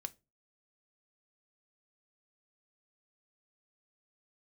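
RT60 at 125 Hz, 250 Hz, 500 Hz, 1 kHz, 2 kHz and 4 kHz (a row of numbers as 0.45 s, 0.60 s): 0.45 s, 0.35 s, 0.30 s, 0.25 s, 0.20 s, 0.20 s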